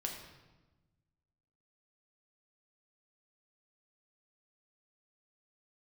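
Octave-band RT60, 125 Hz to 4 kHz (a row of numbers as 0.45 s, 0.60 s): 1.8 s, 1.6 s, 1.2 s, 1.1 s, 0.95 s, 0.90 s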